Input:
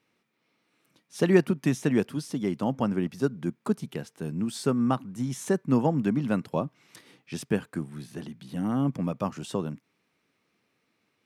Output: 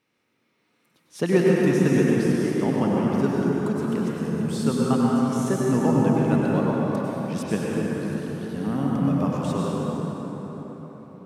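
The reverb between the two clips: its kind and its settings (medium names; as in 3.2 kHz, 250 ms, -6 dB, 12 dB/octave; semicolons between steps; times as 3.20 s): plate-style reverb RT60 4.9 s, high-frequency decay 0.5×, pre-delay 85 ms, DRR -5 dB; trim -1 dB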